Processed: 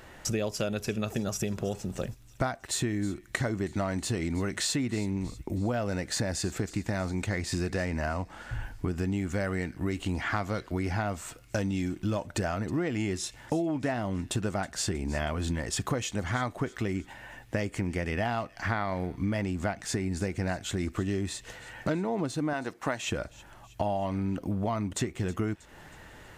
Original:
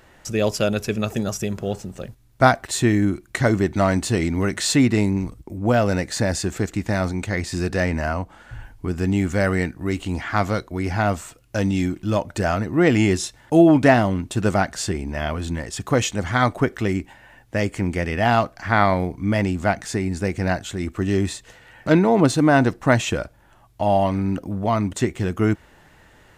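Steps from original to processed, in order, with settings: 22.53–23.03 HPF 490 Hz 6 dB/oct; compressor 10:1, threshold -29 dBFS, peak gain reduction 20.5 dB; thin delay 0.319 s, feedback 53%, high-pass 2700 Hz, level -17 dB; gain +2 dB

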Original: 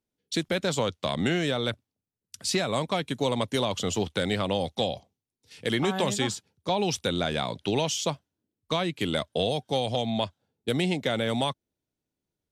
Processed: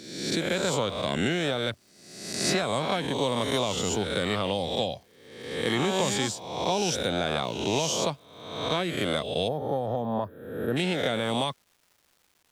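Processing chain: spectral swells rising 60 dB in 0.97 s; crackle 570/s -49 dBFS; spectral gain 9.48–10.77, 1900–11000 Hz -22 dB; gain -2.5 dB

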